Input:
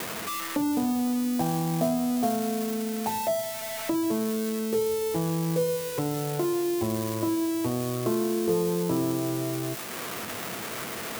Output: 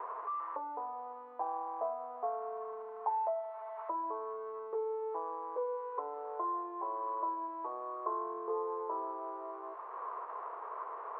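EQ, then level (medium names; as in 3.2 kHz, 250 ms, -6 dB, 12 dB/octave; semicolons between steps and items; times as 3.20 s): elliptic high-pass 410 Hz, stop band 60 dB; four-pole ladder low-pass 1.1 kHz, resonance 80%; +1.0 dB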